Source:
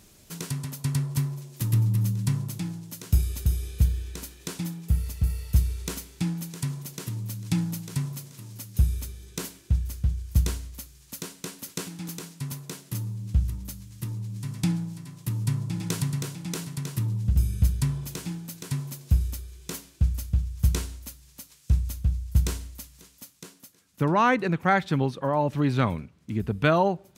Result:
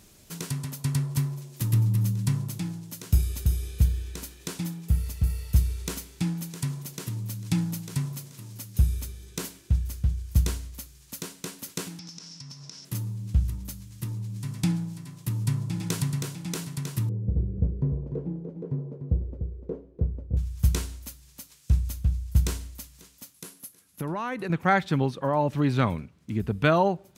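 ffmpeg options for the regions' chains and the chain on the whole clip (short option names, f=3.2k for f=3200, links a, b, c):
-filter_complex "[0:a]asettb=1/sr,asplit=3[a][b][c];[a]atrim=end=11.994[d];[b]atrim=start=11.99:end=12.85,asetpts=PTS-STARTPTS,afade=t=in:d=0.004:c=qsin,afade=t=out:st=0.856:d=0.004:c=qsin,lowpass=f=5.4k:t=q:w=11,equalizer=f=390:w=2.9:g=-7,acompressor=threshold=-39dB:ratio=10:attack=3.2:release=140:knee=1:detection=peak[e];[c]atrim=start=12.846[f];[d][e]acrossfade=d=0.004:c1=hsin:c2=qsin[g];[g][f]acrossfade=d=0.004:c1=qsin:c2=hsin,asettb=1/sr,asplit=3[h][i][j];[h]atrim=end=17.094[k];[i]atrim=start=17.09:end=20.37,asetpts=PTS-STARTPTS,afade=t=in:d=0.004:c=qsin,afade=t=out:st=3.276:d=0.004:c=qsin,lowpass=f=470:t=q:w=4.1,lowshelf=f=70:g=-9,aecho=1:1:296:0.376,atrim=end_sample=144648[l];[j]atrim=start=20.366[m];[k][l]acrossfade=d=0.004:c1=hsin:c2=qsin[n];[n][m]acrossfade=d=0.004:c1=qsin:c2=hsin,asettb=1/sr,asplit=3[o][p][q];[o]atrim=end=23.344[r];[p]atrim=start=23.34:end=24.5,asetpts=PTS-STARTPTS,afade=t=in:d=0.004:c=qsin,afade=t=out:st=1.156:d=0.004:c=qsin,equalizer=f=11k:t=o:w=0.36:g=13,acompressor=threshold=-28dB:ratio=6:attack=3.2:release=140:knee=1:detection=peak[s];[q]atrim=start=24.496[t];[r][s]acrossfade=d=0.004:c1=hsin:c2=qsin[u];[u][t]acrossfade=d=0.004:c1=qsin:c2=hsin"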